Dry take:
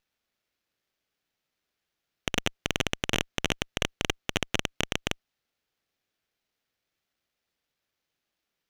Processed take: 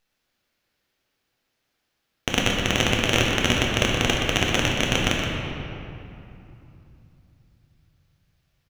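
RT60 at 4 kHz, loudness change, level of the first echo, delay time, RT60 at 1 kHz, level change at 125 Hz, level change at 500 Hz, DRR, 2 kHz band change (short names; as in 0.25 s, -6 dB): 1.7 s, +8.5 dB, -8.0 dB, 0.123 s, 2.9 s, +11.5 dB, +9.5 dB, -3.0 dB, +9.0 dB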